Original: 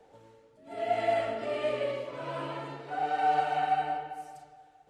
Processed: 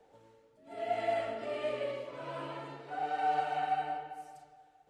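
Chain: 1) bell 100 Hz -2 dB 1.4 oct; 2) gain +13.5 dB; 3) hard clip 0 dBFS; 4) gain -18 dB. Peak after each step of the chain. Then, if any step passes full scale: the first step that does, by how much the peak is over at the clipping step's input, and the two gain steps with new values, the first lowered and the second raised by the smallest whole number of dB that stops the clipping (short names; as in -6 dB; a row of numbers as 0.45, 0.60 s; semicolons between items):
-15.5, -2.0, -2.0, -20.0 dBFS; no overload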